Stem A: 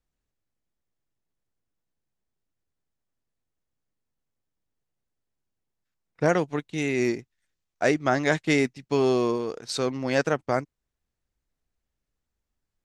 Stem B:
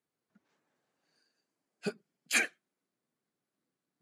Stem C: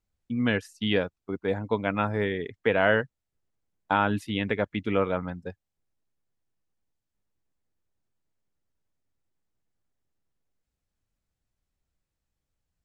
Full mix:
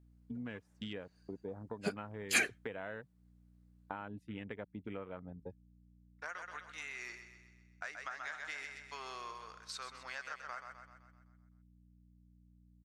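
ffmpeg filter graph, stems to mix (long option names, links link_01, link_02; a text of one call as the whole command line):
ffmpeg -i stem1.wav -i stem2.wav -i stem3.wav -filter_complex "[0:a]agate=range=-33dB:threshold=-42dB:ratio=3:detection=peak,highpass=frequency=1300:width_type=q:width=2.1,aeval=exprs='val(0)+0.00316*(sin(2*PI*60*n/s)+sin(2*PI*2*60*n/s)/2+sin(2*PI*3*60*n/s)/3+sin(2*PI*4*60*n/s)/4+sin(2*PI*5*60*n/s)/5)':channel_layout=same,volume=-12dB,asplit=2[link_01][link_02];[link_02]volume=-12.5dB[link_03];[1:a]volume=-1.5dB[link_04];[2:a]afwtdn=0.0178,volume=-7.5dB[link_05];[link_01][link_05]amix=inputs=2:normalize=0,acompressor=threshold=-41dB:ratio=6,volume=0dB[link_06];[link_03]aecho=0:1:128|256|384|512|640|768|896|1024:1|0.54|0.292|0.157|0.085|0.0459|0.0248|0.0134[link_07];[link_04][link_06][link_07]amix=inputs=3:normalize=0" out.wav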